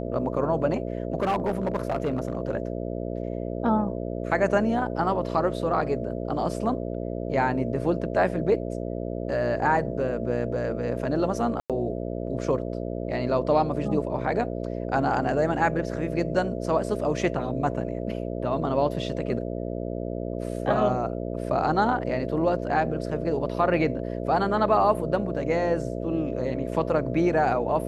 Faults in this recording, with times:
mains buzz 60 Hz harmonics 11 −31 dBFS
0:01.18–0:02.37: clipping −20.5 dBFS
0:11.60–0:11.70: drop-out 97 ms

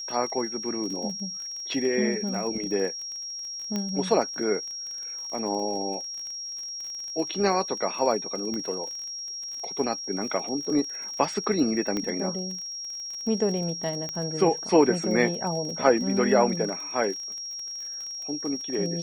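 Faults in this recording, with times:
surface crackle 37 per second −34 dBFS
whistle 5,600 Hz −33 dBFS
0:03.76: click −16 dBFS
0:08.54: click −21 dBFS
0:11.97: click −16 dBFS
0:14.09: click −19 dBFS

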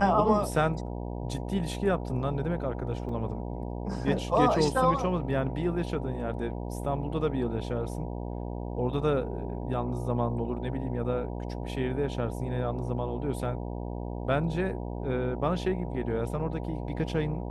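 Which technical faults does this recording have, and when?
mains buzz 60 Hz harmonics 16 −35 dBFS
0:03.09: drop-out 2.9 ms

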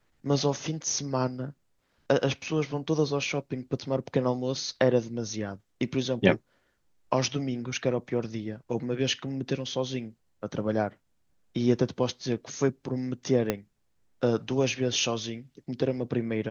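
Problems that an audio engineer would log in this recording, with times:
0:13.50: click −11 dBFS

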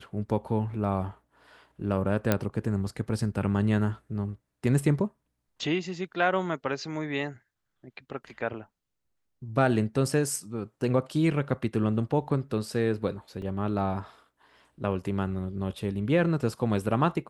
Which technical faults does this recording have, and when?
0:02.32: click −9 dBFS
0:13.42: drop-out 2.1 ms

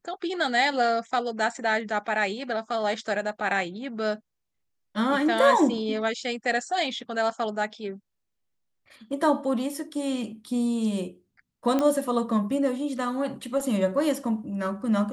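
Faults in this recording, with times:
0:11.79: click −13 dBFS

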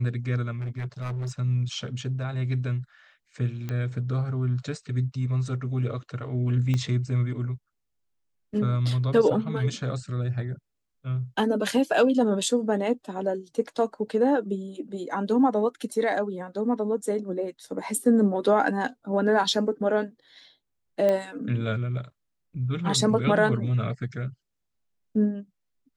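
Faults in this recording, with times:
0:00.53–0:01.31: clipping −28 dBFS
0:03.69: click −19 dBFS
0:06.74: click −16 dBFS
0:21.09: click −14 dBFS

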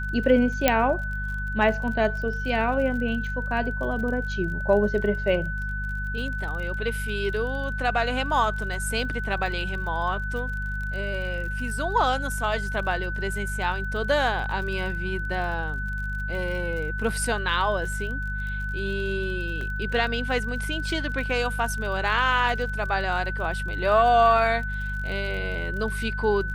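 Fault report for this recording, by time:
surface crackle 40 per second −34 dBFS
mains hum 50 Hz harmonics 4 −31 dBFS
whistle 1,500 Hz −31 dBFS
0:00.68: click −3 dBFS
0:19.61: drop-out 2.5 ms

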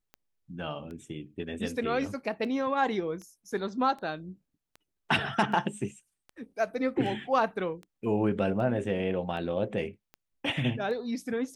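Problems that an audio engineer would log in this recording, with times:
scratch tick 78 rpm −31 dBFS

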